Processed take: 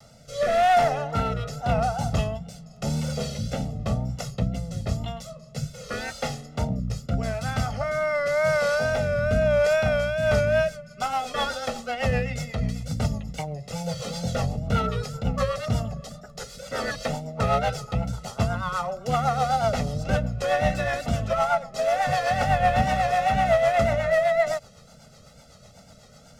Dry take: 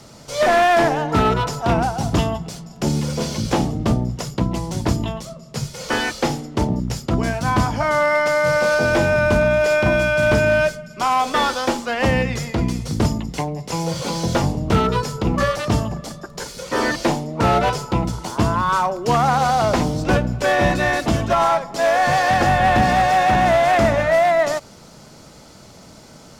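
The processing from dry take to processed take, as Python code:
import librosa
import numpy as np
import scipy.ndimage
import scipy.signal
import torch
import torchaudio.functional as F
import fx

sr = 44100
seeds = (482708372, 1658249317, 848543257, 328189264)

y = x + 0.92 * np.pad(x, (int(1.5 * sr / 1000.0), 0))[:len(x)]
y = fx.rotary_switch(y, sr, hz=0.9, then_hz=8.0, switch_at_s=10.0)
y = fx.wow_flutter(y, sr, seeds[0], rate_hz=2.1, depth_cents=69.0)
y = F.gain(torch.from_numpy(y), -7.5).numpy()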